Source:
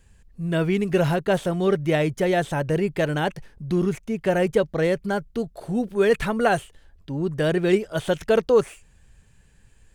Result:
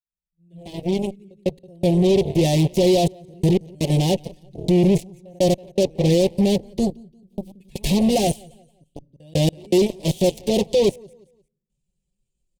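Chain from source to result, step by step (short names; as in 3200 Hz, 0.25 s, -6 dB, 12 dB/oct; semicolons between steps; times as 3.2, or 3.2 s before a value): opening faded in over 2.15 s; gate -41 dBFS, range -22 dB; comb 5.5 ms, depth 85%; in parallel at +2.5 dB: limiter -14.5 dBFS, peak gain reduction 11 dB; on the sum: step gate "xxxxxxxxx...x..x" 154 bpm -60 dB; tempo 0.79×; pre-echo 0.151 s -22 dB; overloaded stage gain 10.5 dB; feedback echo 0.175 s, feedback 31%, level -17.5 dB; on a send at -22.5 dB: reverb RT60 0.70 s, pre-delay 5 ms; on the sum: added harmonics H 7 -13 dB, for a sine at -8 dBFS; Butterworth band-stop 1400 Hz, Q 0.58; gain -2 dB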